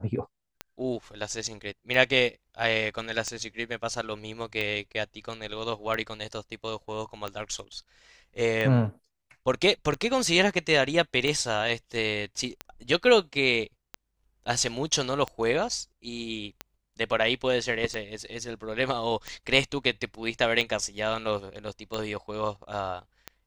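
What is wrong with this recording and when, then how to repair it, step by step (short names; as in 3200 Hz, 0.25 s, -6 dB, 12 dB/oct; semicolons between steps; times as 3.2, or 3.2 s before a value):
tick 45 rpm -17 dBFS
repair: de-click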